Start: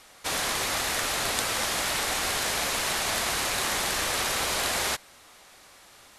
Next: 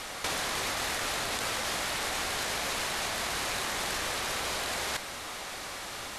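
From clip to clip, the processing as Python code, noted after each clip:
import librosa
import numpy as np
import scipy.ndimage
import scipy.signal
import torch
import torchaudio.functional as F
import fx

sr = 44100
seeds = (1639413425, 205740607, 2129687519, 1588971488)

y = fx.high_shelf(x, sr, hz=8300.0, db=-6.0)
y = fx.over_compress(y, sr, threshold_db=-38.0, ratio=-1.0)
y = F.gain(torch.from_numpy(y), 5.5).numpy()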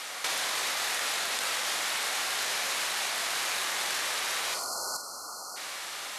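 y = fx.spec_erase(x, sr, start_s=4.54, length_s=1.03, low_hz=1500.0, high_hz=4100.0)
y = fx.highpass(y, sr, hz=1100.0, slope=6)
y = fx.room_flutter(y, sr, wall_m=8.0, rt60_s=0.31)
y = F.gain(torch.from_numpy(y), 2.5).numpy()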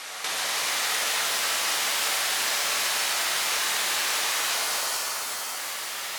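y = fx.rev_shimmer(x, sr, seeds[0], rt60_s=3.1, semitones=7, shimmer_db=-2, drr_db=-0.5)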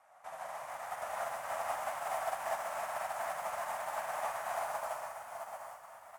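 y = fx.curve_eq(x, sr, hz=(130.0, 410.0, 650.0, 2000.0, 4100.0, 8300.0), db=(0, -18, 7, -13, -29, -17))
y = y + 10.0 ** (-4.0 / 20.0) * np.pad(y, (int(774 * sr / 1000.0), 0))[:len(y)]
y = fx.upward_expand(y, sr, threshold_db=-42.0, expansion=2.5)
y = F.gain(torch.from_numpy(y), -1.5).numpy()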